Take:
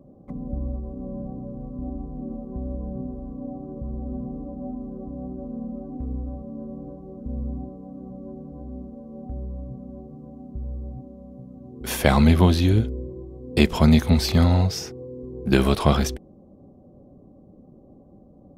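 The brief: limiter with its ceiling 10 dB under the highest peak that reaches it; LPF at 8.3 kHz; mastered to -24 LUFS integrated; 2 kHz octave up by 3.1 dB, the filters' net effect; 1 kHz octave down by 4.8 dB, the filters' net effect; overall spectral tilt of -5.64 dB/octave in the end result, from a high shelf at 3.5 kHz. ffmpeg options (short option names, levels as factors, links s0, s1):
-af "lowpass=8300,equalizer=f=1000:t=o:g=-8,equalizer=f=2000:t=o:g=4.5,highshelf=f=3500:g=5,volume=1.58,alimiter=limit=0.422:level=0:latency=1"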